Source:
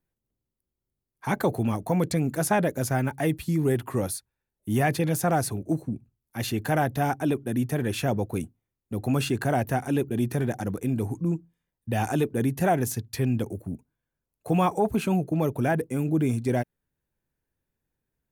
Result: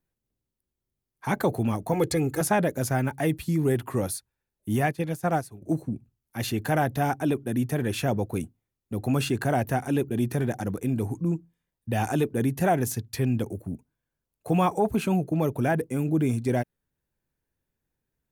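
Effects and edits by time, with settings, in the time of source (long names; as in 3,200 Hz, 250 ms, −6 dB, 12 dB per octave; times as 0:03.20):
0:01.93–0:02.41: comb filter 2.4 ms, depth 93%
0:04.76–0:05.62: expander for the loud parts 2.5 to 1, over −33 dBFS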